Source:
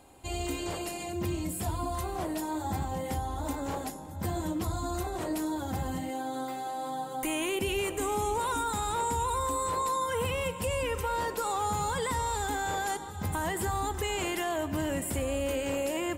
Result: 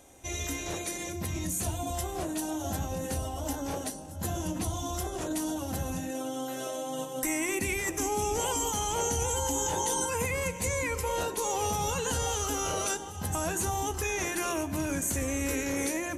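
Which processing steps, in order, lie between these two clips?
treble shelf 6.4 kHz +8 dB; hum notches 50/100/150/200/250/300/350/400/450 Hz; formant shift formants -3 st

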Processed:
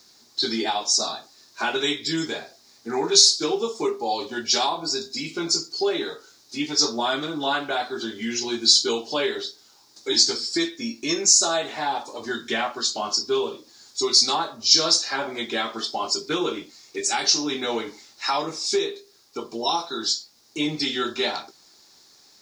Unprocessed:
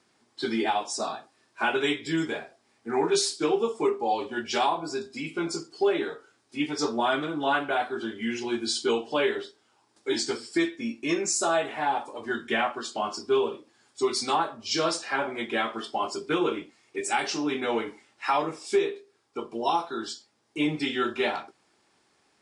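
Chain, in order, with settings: high-order bell 5.1 kHz +15.5 dB 1.1 oct; in parallel at -1 dB: compression 6:1, threshold -35 dBFS, peak gain reduction 23 dB; on the sum: bit crusher 10-bit; trim -1.5 dB

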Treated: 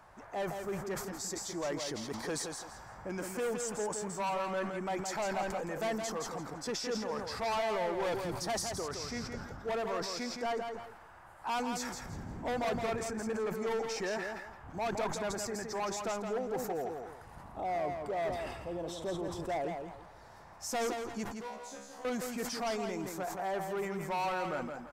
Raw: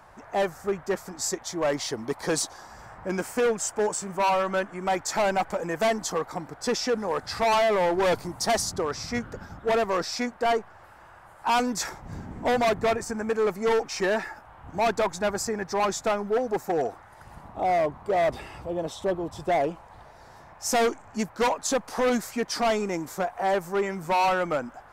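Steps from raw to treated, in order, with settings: peak limiter -25 dBFS, peak gain reduction 5.5 dB; 21.24–22.05 s: feedback comb 69 Hz, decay 0.52 s, harmonics all, mix 100%; feedback delay 167 ms, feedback 24%, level -6 dB; decay stretcher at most 57 dB/s; trim -6 dB

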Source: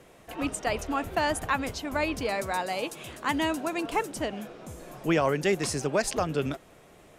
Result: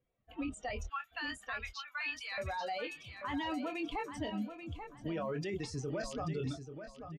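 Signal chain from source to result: expander on every frequency bin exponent 2; 0.87–2.38 s: high-pass 1.4 kHz 24 dB/octave; doubling 24 ms -9 dB; peak limiter -37.5 dBFS, peak gain reduction 23.5 dB; feedback delay 836 ms, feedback 27%, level -9 dB; level-controlled noise filter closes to 2.5 kHz, open at -32 dBFS; trim +7 dB

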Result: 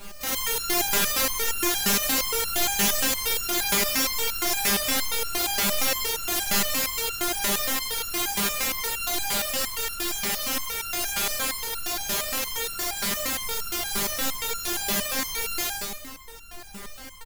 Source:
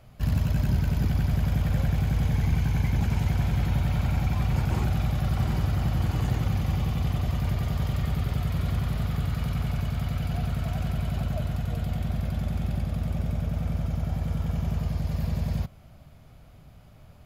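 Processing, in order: spectral contrast reduction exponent 0.17; in parallel at -12 dB: decimation with a swept rate 31×, swing 60% 0.32 Hz; on the sum: Schroeder reverb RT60 0.39 s, combs from 33 ms, DRR -2 dB; added noise pink -37 dBFS; on a send: frequency-shifting echo 139 ms, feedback 39%, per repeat -82 Hz, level -3 dB; on the sum: resonator arpeggio 8.6 Hz 200–1400 Hz; trim +8.5 dB

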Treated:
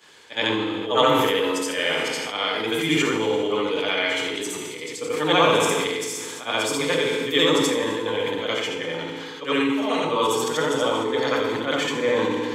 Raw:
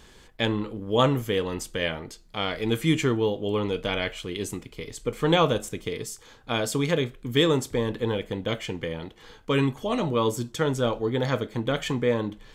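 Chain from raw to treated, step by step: short-time spectra conjugated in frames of 182 ms; frequency weighting A; FDN reverb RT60 1.5 s, low-frequency decay 1.05×, high-frequency decay 1×, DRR 3.5 dB; decay stretcher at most 21 dB/s; trim +6.5 dB

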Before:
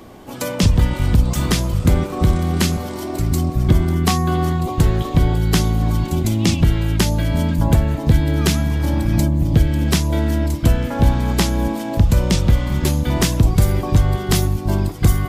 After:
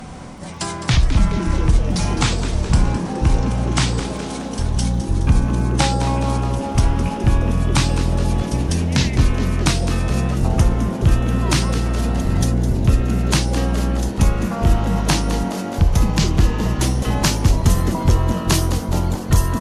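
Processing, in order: gliding tape speed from 67% -> 89%; fifteen-band graphic EQ 400 Hz -9 dB, 1 kHz +6 dB, 6.3 kHz +4 dB; reverse; upward compressor, threshold -23 dBFS; reverse; crackle 11 per s -36 dBFS; on a send: frequency-shifting echo 210 ms, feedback 57%, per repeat +140 Hz, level -11.5 dB; on the sum: trim -1 dB

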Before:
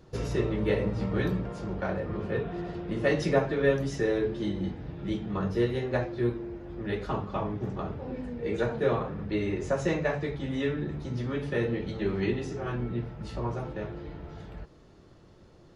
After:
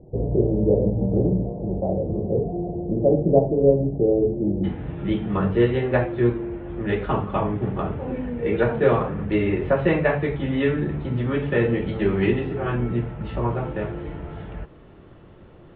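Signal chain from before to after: steep low-pass 750 Hz 48 dB/octave, from 4.63 s 3.3 kHz; trim +8 dB

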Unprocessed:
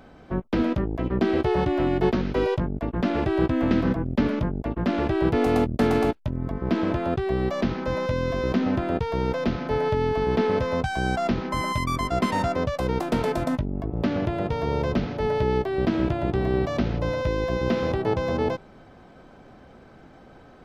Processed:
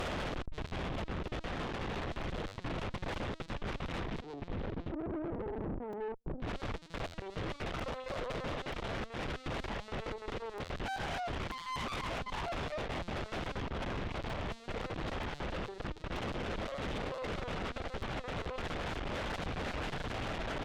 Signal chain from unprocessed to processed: one-bit comparator; 4.22–6.42 s: steep low-pass 560 Hz 48 dB/octave; delay 690 ms -9.5 dB; flange 0.12 Hz, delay 1.6 ms, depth 5.5 ms, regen -35%; peak limiter -29.5 dBFS, peak gain reduction 8.5 dB; LPC vocoder at 8 kHz pitch kept; valve stage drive 41 dB, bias 0.6; crackling interface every 0.93 s, samples 128, repeat, from 0.35 s; warped record 78 rpm, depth 100 cents; trim +6 dB

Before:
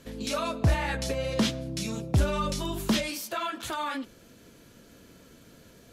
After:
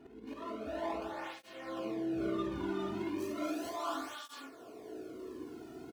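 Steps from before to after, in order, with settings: median filter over 25 samples; tone controls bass -9 dB, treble -10 dB, from 3.18 s treble +2 dB; comb 2.8 ms, depth 60%; dynamic bell 210 Hz, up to +5 dB, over -50 dBFS, Q 2.9; slow attack 353 ms; compression, threshold -42 dBFS, peak gain reduction 12.5 dB; early reflections 51 ms -8 dB, 70 ms -7.5 dB; gated-style reverb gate 480 ms rising, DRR -3 dB; cancelling through-zero flanger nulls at 0.35 Hz, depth 1.9 ms; trim +5 dB

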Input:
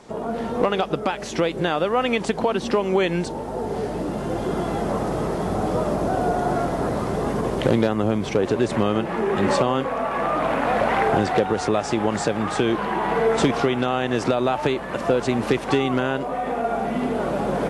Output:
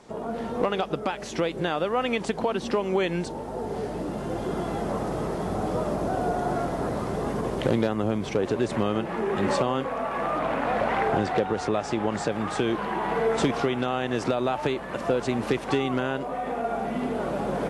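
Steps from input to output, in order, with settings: 10.39–12.32 s: treble shelf 7.3 kHz -6 dB; trim -4.5 dB

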